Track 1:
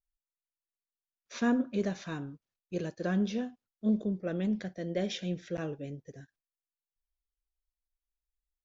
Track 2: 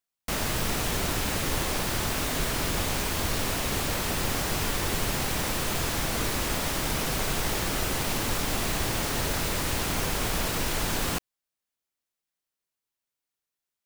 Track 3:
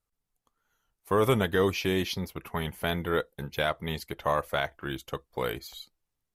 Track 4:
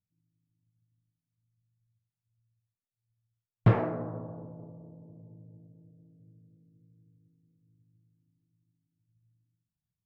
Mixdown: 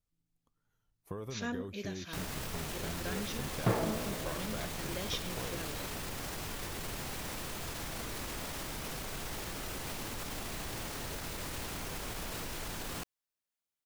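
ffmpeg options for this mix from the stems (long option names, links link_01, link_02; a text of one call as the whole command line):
ffmpeg -i stem1.wav -i stem2.wav -i stem3.wav -i stem4.wav -filter_complex "[0:a]equalizer=frequency=4600:width=0.32:gain=14.5,volume=-12.5dB[link_01];[1:a]alimiter=level_in=2dB:limit=-24dB:level=0:latency=1,volume=-2dB,adelay=1850,volume=-5dB[link_02];[2:a]lowshelf=frequency=440:gain=11.5,acompressor=threshold=-28dB:ratio=10,volume=-11dB[link_03];[3:a]highpass=170,volume=-3.5dB[link_04];[link_01][link_02][link_03][link_04]amix=inputs=4:normalize=0" out.wav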